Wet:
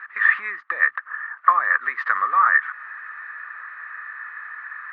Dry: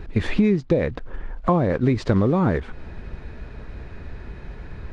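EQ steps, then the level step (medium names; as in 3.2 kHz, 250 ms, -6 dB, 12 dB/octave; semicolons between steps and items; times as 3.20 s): resonant high-pass 1.2 kHz, resonance Q 12; resonant low-pass 1.8 kHz, resonance Q 12; tilt EQ +2.5 dB/octave; -7.0 dB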